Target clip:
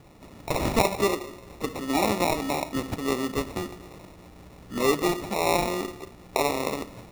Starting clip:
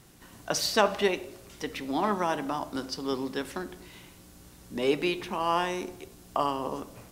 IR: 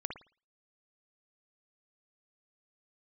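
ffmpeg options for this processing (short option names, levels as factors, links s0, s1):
-filter_complex "[0:a]asplit=2[s0][s1];[s1]alimiter=limit=0.126:level=0:latency=1:release=225,volume=0.944[s2];[s0][s2]amix=inputs=2:normalize=0,acrusher=samples=28:mix=1:aa=0.000001,volume=0.841"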